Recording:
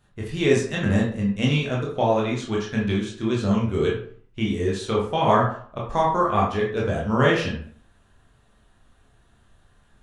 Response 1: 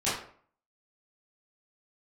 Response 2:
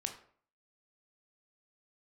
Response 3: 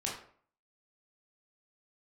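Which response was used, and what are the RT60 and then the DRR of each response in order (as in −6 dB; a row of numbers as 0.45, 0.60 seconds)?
3; 0.50, 0.50, 0.50 seconds; −12.5, 4.0, −4.0 decibels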